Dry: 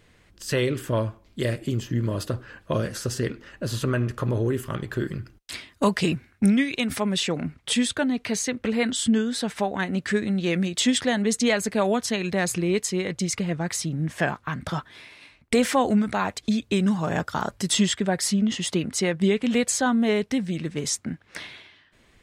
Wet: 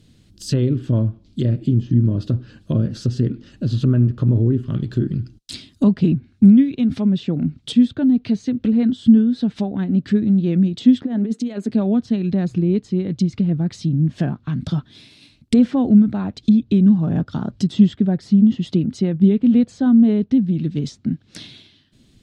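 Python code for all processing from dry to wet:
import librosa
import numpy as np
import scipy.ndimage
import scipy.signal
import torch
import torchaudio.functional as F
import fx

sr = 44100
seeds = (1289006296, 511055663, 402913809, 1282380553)

y = fx.chain(x, sr, fx.highpass(hz=240.0, slope=24),
    fx.peak_eq(hz=4600.0, db=-14.0, octaves=1.7),
    fx.over_compress(threshold_db=-28.0, ratio=-1.0), at=(11.02, 11.7))
y = fx.env_lowpass_down(y, sr, base_hz=1600.0, full_db=-22.5)
y = fx.graphic_eq(y, sr, hz=(125, 250, 500, 1000, 2000, 4000), db=(7, 8, -6, -10, -12, 6))
y = y * librosa.db_to_amplitude(2.5)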